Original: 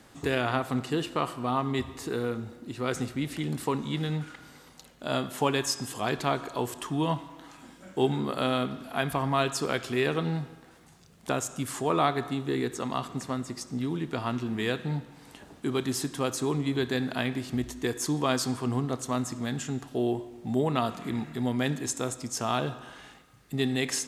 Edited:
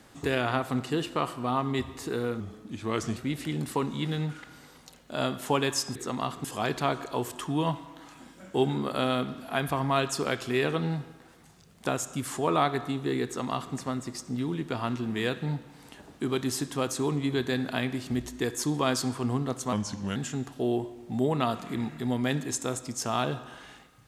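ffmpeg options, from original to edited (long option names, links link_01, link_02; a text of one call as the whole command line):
ffmpeg -i in.wav -filter_complex "[0:a]asplit=7[link_01][link_02][link_03][link_04][link_05][link_06][link_07];[link_01]atrim=end=2.404[link_08];[link_02]atrim=start=2.4:end=3.08,asetpts=PTS-STARTPTS,asetrate=39249,aresample=44100,atrim=end_sample=33694,asetpts=PTS-STARTPTS[link_09];[link_03]atrim=start=3.076:end=5.872[link_10];[link_04]atrim=start=12.678:end=13.172[link_11];[link_05]atrim=start=5.868:end=19.154[link_12];[link_06]atrim=start=19.15:end=19.51,asetpts=PTS-STARTPTS,asetrate=36603,aresample=44100[link_13];[link_07]atrim=start=19.506[link_14];[link_08][link_09]acrossfade=duration=0.004:curve1=hsin:curve2=hsin[link_15];[link_15][link_10]acrossfade=duration=0.004:curve1=hsin:curve2=hsin[link_16];[link_16][link_11]acrossfade=duration=0.004:curve1=hsin:curve2=hsin[link_17];[link_17][link_12]acrossfade=duration=0.004:curve1=hsin:curve2=hsin[link_18];[link_18][link_13]acrossfade=duration=0.004:curve1=hsin:curve2=hsin[link_19];[link_19][link_14]acrossfade=duration=0.004:curve1=hsin:curve2=hsin" out.wav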